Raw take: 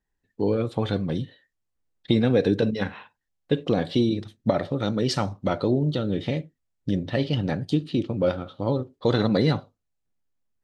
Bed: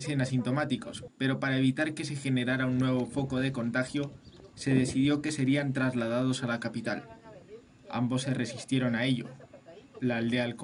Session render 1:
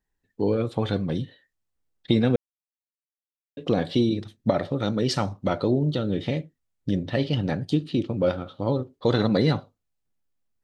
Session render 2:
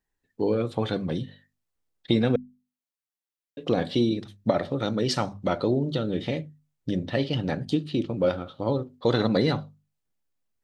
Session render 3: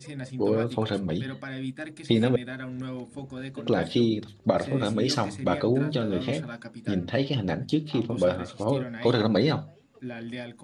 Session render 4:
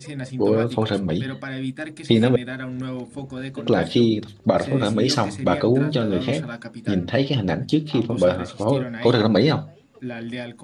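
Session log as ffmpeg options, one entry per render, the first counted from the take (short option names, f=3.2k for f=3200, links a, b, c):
-filter_complex "[0:a]asplit=3[a][b][c];[a]atrim=end=2.36,asetpts=PTS-STARTPTS,afade=t=out:st=2.356:d=0.004:c=hsin[d];[b]atrim=start=2.36:end=3.57,asetpts=PTS-STARTPTS,volume=0[e];[c]atrim=start=3.57,asetpts=PTS-STARTPTS,afade=t=in:d=0.004:c=hsin[f];[d][e][f]concat=n=3:v=0:a=1"
-af "lowshelf=f=190:g=-3,bandreject=f=50:t=h:w=6,bandreject=f=100:t=h:w=6,bandreject=f=150:t=h:w=6,bandreject=f=200:t=h:w=6,bandreject=f=250:t=h:w=6"
-filter_complex "[1:a]volume=-7.5dB[a];[0:a][a]amix=inputs=2:normalize=0"
-af "volume=5.5dB,alimiter=limit=-2dB:level=0:latency=1"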